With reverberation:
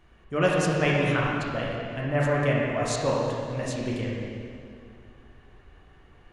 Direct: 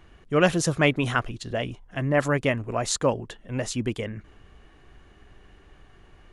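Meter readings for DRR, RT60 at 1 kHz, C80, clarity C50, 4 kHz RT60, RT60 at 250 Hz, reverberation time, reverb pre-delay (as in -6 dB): -4.5 dB, 2.3 s, 0.0 dB, -2.0 dB, 2.0 s, 2.6 s, 2.3 s, 16 ms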